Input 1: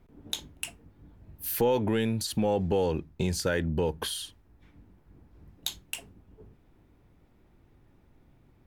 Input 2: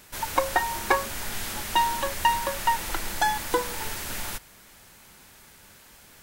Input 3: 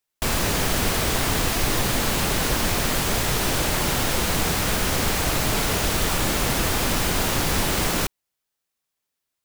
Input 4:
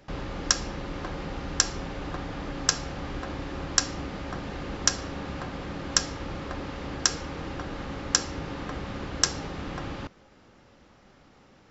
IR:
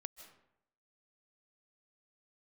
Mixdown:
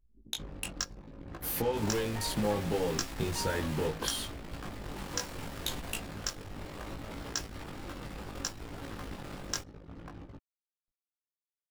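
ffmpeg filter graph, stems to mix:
-filter_complex "[0:a]acompressor=threshold=-30dB:ratio=2,volume=2dB[link_01];[1:a]alimiter=limit=-17.5dB:level=0:latency=1:release=71,adelay=1600,volume=-12dB,asplit=3[link_02][link_03][link_04];[link_02]atrim=end=3.86,asetpts=PTS-STARTPTS,afade=type=out:start_time=3.856:duration=0.004:curve=hsin[link_05];[link_03]atrim=start=3.86:end=4.96,asetpts=PTS-STARTPTS,volume=0[link_06];[link_04]atrim=start=4.96,asetpts=PTS-STARTPTS,afade=type=in:duration=0.004:curve=hsin[link_07];[link_05][link_06][link_07]concat=n=3:v=0:a=1[link_08];[2:a]bandreject=frequency=6200:width=11,adelay=1550,volume=-17.5dB[link_09];[3:a]alimiter=limit=-7dB:level=0:latency=1:release=440,acompressor=mode=upward:threshold=-37dB:ratio=2.5,acrusher=bits=5:mix=0:aa=0.000001,adelay=300,volume=-5.5dB[link_10];[link_01][link_08][link_09][link_10]amix=inputs=4:normalize=0,anlmdn=2.51,flanger=delay=17.5:depth=3.1:speed=0.69"

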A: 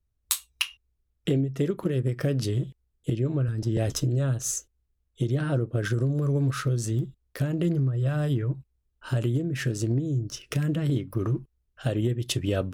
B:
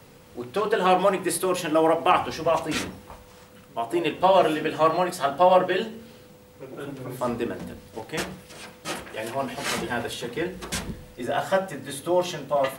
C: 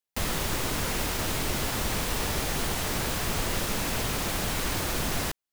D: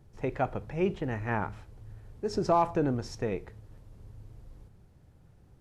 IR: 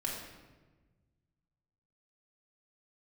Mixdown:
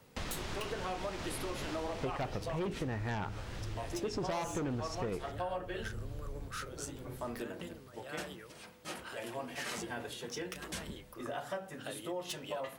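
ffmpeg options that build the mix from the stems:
-filter_complex "[0:a]highpass=780,volume=25dB,asoftclip=hard,volume=-25dB,volume=-6.5dB[link_01];[1:a]volume=-11dB[link_02];[2:a]lowpass=5300,volume=-6.5dB,afade=type=out:start_time=1.79:duration=0.65:silence=0.316228[link_03];[3:a]aeval=exprs='0.168*(cos(1*acos(clip(val(0)/0.168,-1,1)))-cos(1*PI/2))+0.0668*(cos(5*acos(clip(val(0)/0.168,-1,1)))-cos(5*PI/2))':channel_layout=same,adelay=1800,volume=-2dB[link_04];[link_01][link_02][link_03][link_04]amix=inputs=4:normalize=0,acompressor=threshold=-36dB:ratio=4"

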